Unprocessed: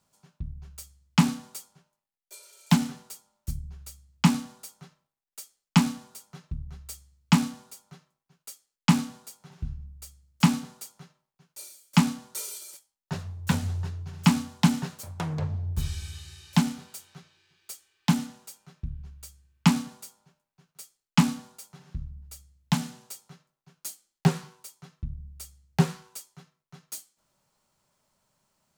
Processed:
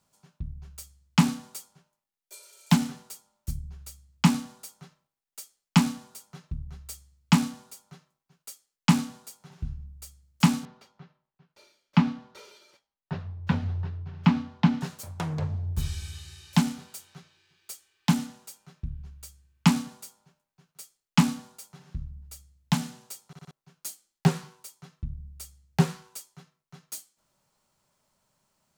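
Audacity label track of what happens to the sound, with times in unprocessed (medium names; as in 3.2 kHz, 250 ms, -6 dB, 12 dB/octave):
10.650000	14.810000	distance through air 270 m
23.270000	23.270000	stutter in place 0.06 s, 4 plays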